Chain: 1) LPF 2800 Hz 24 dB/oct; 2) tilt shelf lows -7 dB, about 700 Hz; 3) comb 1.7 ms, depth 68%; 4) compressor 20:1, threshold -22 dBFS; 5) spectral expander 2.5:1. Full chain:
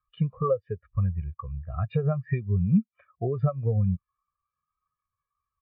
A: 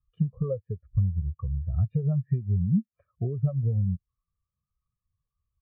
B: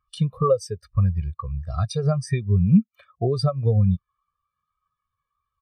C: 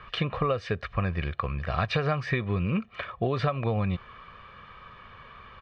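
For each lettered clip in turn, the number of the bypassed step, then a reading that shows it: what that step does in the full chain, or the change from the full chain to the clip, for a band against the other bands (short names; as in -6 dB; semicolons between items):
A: 2, momentary loudness spread change -3 LU; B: 1, 2 kHz band -1.5 dB; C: 5, 2 kHz band +16.5 dB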